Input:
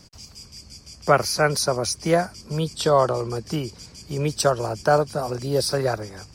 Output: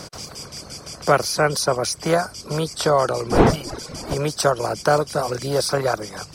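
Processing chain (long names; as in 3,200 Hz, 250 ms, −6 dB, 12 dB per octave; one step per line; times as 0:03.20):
compressor on every frequency bin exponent 0.6
0:03.29–0:04.13: wind on the microphone 530 Hz −20 dBFS
reverb reduction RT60 0.75 s
level −1 dB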